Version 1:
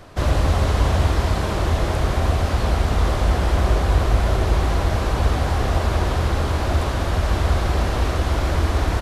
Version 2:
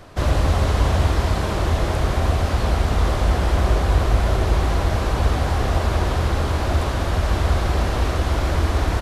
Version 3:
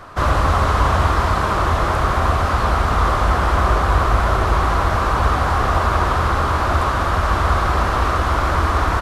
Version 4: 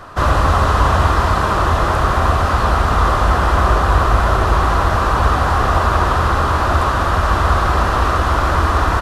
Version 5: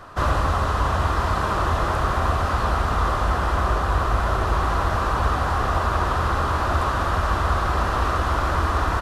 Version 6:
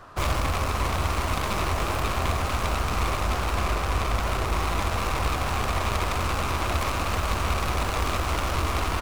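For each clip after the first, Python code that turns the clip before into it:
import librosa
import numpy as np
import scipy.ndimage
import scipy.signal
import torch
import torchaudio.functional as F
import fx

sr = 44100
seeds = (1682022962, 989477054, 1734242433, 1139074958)

y1 = x
y2 = fx.peak_eq(y1, sr, hz=1200.0, db=13.5, octaves=0.98)
y3 = fx.notch(y2, sr, hz=2200.0, q=13.0)
y3 = y3 * librosa.db_to_amplitude(2.5)
y4 = fx.rider(y3, sr, range_db=10, speed_s=0.5)
y4 = y4 * librosa.db_to_amplitude(-7.0)
y5 = fx.tracing_dist(y4, sr, depth_ms=0.42)
y5 = y5 * librosa.db_to_amplitude(-4.5)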